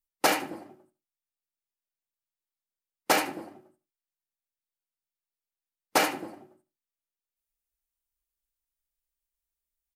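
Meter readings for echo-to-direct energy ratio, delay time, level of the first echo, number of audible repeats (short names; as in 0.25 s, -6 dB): -17.0 dB, 76 ms, -17.0 dB, 2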